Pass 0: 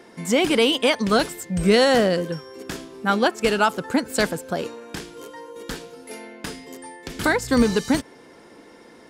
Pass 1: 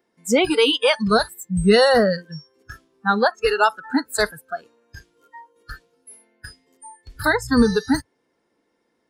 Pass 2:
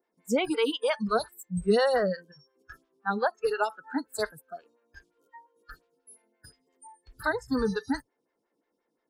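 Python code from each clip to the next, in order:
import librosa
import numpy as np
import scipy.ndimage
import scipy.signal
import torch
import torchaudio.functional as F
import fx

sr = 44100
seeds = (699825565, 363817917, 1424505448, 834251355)

y1 = fx.noise_reduce_blind(x, sr, reduce_db=25)
y1 = y1 * librosa.db_to_amplitude(2.5)
y2 = fx.stagger_phaser(y1, sr, hz=5.7)
y2 = y2 * librosa.db_to_amplitude(-7.0)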